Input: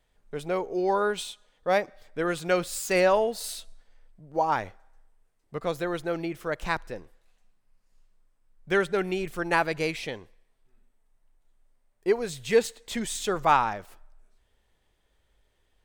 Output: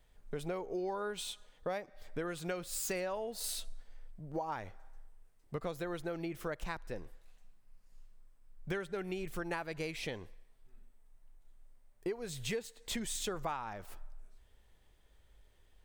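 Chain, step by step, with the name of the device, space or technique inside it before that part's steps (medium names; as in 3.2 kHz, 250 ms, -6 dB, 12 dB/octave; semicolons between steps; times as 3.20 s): ASMR close-microphone chain (bass shelf 120 Hz +6.5 dB; compression 10:1, threshold -35 dBFS, peak gain reduction 20 dB; treble shelf 12 kHz +5.5 dB)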